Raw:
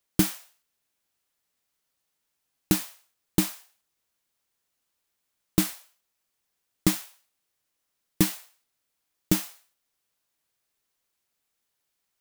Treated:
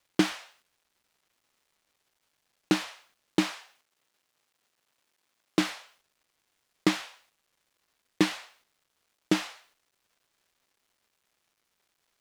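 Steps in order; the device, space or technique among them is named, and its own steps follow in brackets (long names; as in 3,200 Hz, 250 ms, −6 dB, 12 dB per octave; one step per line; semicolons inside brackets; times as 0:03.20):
phone line with mismatched companding (band-pass filter 310–3,600 Hz; mu-law and A-law mismatch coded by mu)
0:03.54–0:05.61: high-pass filter 150 Hz 6 dB per octave
level +3.5 dB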